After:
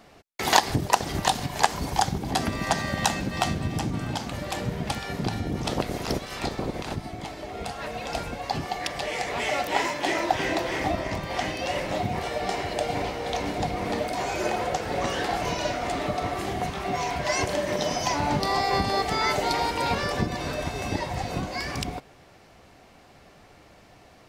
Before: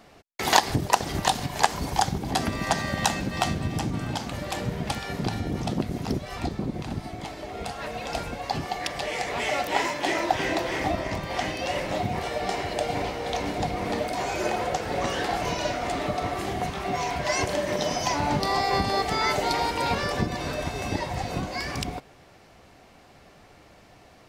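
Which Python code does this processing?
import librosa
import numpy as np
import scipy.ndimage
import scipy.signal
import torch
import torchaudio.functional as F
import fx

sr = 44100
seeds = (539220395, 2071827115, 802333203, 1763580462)

y = fx.spec_clip(x, sr, under_db=14, at=(5.64, 6.94), fade=0.02)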